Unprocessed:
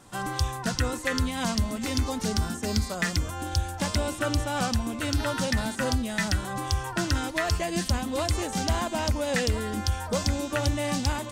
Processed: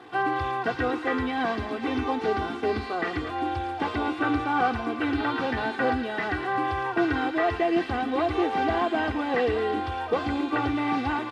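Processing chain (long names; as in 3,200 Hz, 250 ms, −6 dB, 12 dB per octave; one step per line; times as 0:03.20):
linear delta modulator 64 kbit/s, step −43.5 dBFS
high-pass filter 230 Hz 12 dB per octave
high-frequency loss of the air 390 metres
comb filter 2.6 ms, depth 83%
delay with a high-pass on its return 112 ms, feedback 63%, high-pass 1,600 Hz, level −7.5 dB
level +5.5 dB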